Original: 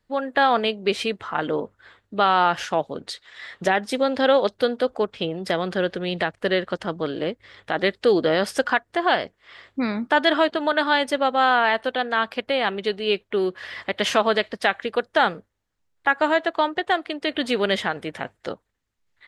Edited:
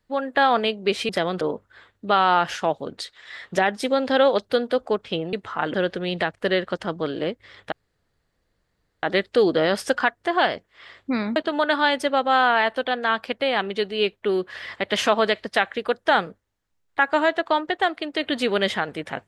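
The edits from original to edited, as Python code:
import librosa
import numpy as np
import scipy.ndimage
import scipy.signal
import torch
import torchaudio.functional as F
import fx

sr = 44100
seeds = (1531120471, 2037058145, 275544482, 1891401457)

y = fx.edit(x, sr, fx.swap(start_s=1.09, length_s=0.41, other_s=5.42, other_length_s=0.32),
    fx.insert_room_tone(at_s=7.72, length_s=1.31),
    fx.cut(start_s=10.05, length_s=0.39), tone=tone)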